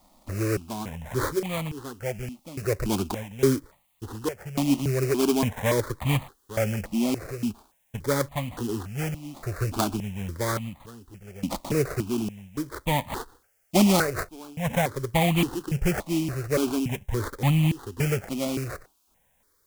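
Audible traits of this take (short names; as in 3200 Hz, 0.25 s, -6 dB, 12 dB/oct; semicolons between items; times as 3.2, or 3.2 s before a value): aliases and images of a low sample rate 2800 Hz, jitter 20%; random-step tremolo, depth 90%; a quantiser's noise floor 12-bit, dither triangular; notches that jump at a steady rate 3.5 Hz 430–1500 Hz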